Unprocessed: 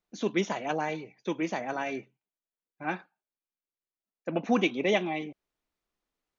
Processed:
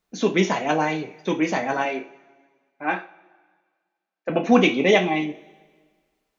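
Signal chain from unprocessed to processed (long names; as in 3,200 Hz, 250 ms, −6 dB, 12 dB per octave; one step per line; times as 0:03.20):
0:01.85–0:04.30: band-pass filter 320–3,800 Hz
coupled-rooms reverb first 0.28 s, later 1.6 s, from −22 dB, DRR 3 dB
level +7.5 dB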